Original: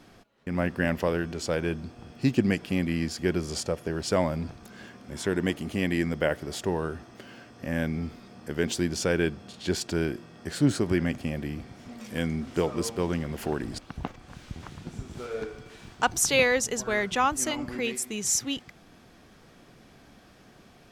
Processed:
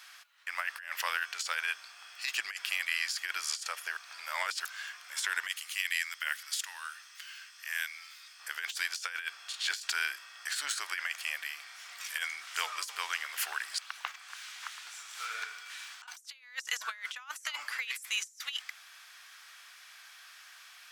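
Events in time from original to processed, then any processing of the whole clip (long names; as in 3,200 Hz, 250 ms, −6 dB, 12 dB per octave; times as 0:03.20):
0:03.97–0:04.65: reverse
0:05.48–0:08.40: guitar amp tone stack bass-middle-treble 10-0-10
whole clip: high-pass filter 1,300 Hz 24 dB per octave; high-shelf EQ 10,000 Hz +4.5 dB; compressor whose output falls as the input rises −38 dBFS, ratio −0.5; level +3 dB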